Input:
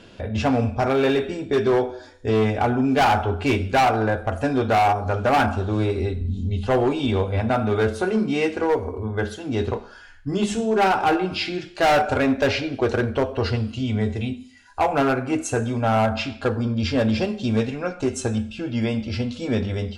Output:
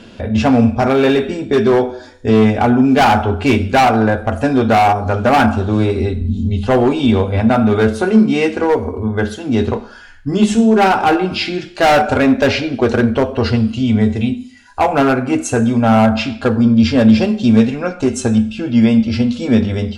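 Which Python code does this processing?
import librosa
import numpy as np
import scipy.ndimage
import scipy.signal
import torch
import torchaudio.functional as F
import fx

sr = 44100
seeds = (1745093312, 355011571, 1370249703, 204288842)

y = fx.peak_eq(x, sr, hz=230.0, db=9.5, octaves=0.23)
y = F.gain(torch.from_numpy(y), 6.5).numpy()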